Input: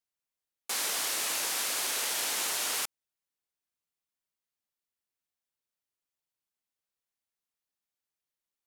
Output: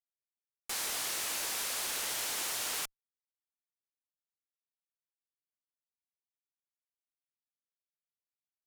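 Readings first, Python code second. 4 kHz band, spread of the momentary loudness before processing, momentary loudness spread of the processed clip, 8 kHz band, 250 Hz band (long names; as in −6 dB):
−4.0 dB, 5 LU, 5 LU, −4.0 dB, −3.5 dB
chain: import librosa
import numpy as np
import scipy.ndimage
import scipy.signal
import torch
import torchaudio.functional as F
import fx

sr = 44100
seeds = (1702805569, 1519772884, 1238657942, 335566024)

y = np.where(np.abs(x) >= 10.0 ** (-35.0 / 20.0), x, 0.0)
y = fx.tube_stage(y, sr, drive_db=30.0, bias=0.3)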